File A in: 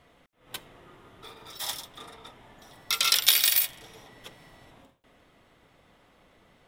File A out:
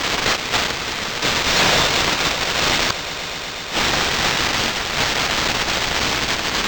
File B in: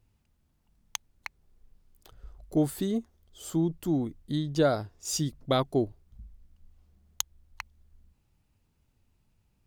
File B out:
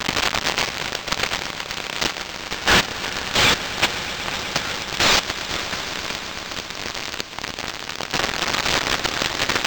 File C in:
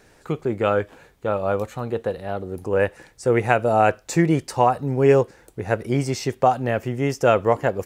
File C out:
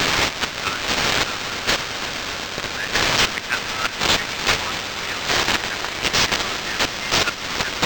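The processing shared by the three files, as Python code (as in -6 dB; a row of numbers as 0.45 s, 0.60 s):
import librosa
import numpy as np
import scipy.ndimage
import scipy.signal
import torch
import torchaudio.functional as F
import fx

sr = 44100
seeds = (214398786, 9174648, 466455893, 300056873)

p1 = x + 0.5 * 10.0 ** (-14.0 / 20.0) * np.diff(np.sign(x), prepend=np.sign(x[:1]))
p2 = scipy.signal.sosfilt(scipy.signal.cheby2(4, 40, 680.0, 'highpass', fs=sr, output='sos'), p1)
p3 = fx.high_shelf(p2, sr, hz=3800.0, db=3.0)
p4 = fx.level_steps(p3, sr, step_db=24)
p5 = p3 + (p4 * librosa.db_to_amplitude(-2.0))
p6 = fx.gate_flip(p5, sr, shuts_db=-4.0, range_db=-30)
p7 = p6 + fx.echo_swell(p6, sr, ms=123, loudest=5, wet_db=-17.0, dry=0)
y = np.interp(np.arange(len(p7)), np.arange(len(p7))[::4], p7[::4])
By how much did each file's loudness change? +5.0 LU, +8.5 LU, +1.5 LU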